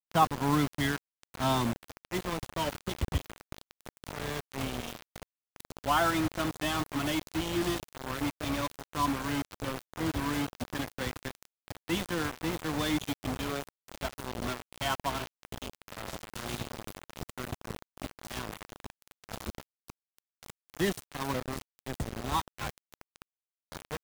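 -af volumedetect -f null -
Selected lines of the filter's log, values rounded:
mean_volume: -34.5 dB
max_volume: -11.2 dB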